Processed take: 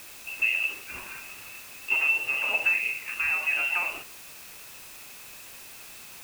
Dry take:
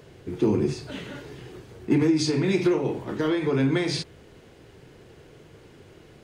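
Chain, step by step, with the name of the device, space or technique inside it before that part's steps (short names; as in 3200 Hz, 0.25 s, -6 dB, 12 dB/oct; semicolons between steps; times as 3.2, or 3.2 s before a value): scrambled radio voice (BPF 350–2600 Hz; inverted band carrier 3000 Hz; white noise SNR 15 dB)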